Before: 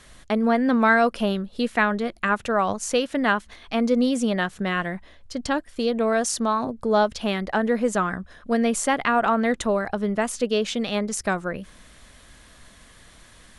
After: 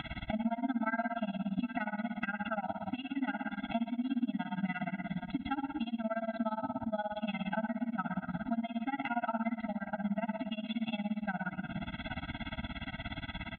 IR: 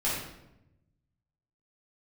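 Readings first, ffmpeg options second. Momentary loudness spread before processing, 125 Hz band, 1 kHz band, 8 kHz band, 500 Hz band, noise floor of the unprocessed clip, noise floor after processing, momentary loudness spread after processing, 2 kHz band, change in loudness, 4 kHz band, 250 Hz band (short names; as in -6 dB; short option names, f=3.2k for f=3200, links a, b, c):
7 LU, -6.5 dB, -13.0 dB, under -40 dB, -17.5 dB, -51 dBFS, -51 dBFS, 6 LU, -14.0 dB, -13.5 dB, -13.5 dB, -10.0 dB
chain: -filter_complex "[0:a]highpass=68,acompressor=mode=upward:threshold=-31dB:ratio=2.5,aresample=8000,aresample=44100,aecho=1:1:794|1588|2382|3176:0.0841|0.048|0.0273|0.0156,asplit=2[a][b];[1:a]atrim=start_sample=2205,adelay=67[c];[b][c]afir=irnorm=-1:irlink=0,volume=-14dB[d];[a][d]amix=inputs=2:normalize=0,tremolo=f=17:d=0.97,acompressor=threshold=-37dB:ratio=6,afftfilt=real='re*eq(mod(floor(b*sr/1024/320),2),0)':imag='im*eq(mod(floor(b*sr/1024/320),2),0)':win_size=1024:overlap=0.75,volume=6.5dB"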